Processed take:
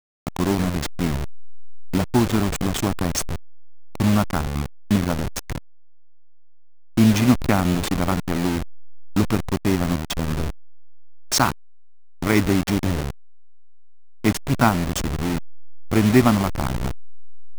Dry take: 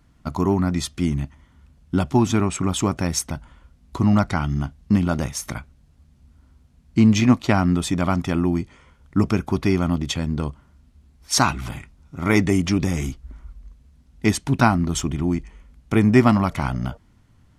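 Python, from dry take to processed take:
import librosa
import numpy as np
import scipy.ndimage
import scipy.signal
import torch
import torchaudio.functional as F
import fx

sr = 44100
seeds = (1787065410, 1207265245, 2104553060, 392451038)

y = fx.delta_hold(x, sr, step_db=-19.0)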